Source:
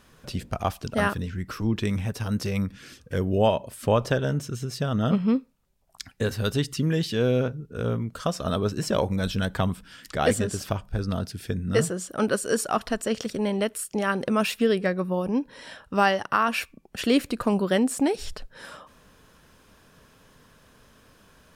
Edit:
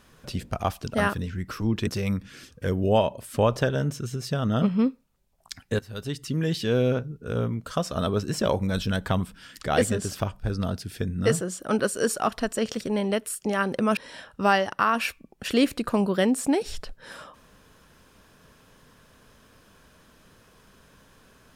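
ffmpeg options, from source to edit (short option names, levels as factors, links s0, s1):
-filter_complex "[0:a]asplit=4[s0][s1][s2][s3];[s0]atrim=end=1.872[s4];[s1]atrim=start=2.358:end=6.28,asetpts=PTS-STARTPTS,afade=t=out:st=3.918:d=0.004:c=hsin:silence=0.141254[s5];[s2]atrim=start=6.28:end=14.462,asetpts=PTS-STARTPTS,afade=t=in:d=0.81:silence=0.141254[s6];[s3]atrim=start=15.498[s7];[s5][s6]concat=n=2:v=0:a=1[s8];[s4][s8]acrossfade=d=0.004:c1=hsin:c2=hsin[s9];[s9][s7]acrossfade=d=0.004:c1=hsin:c2=hsin"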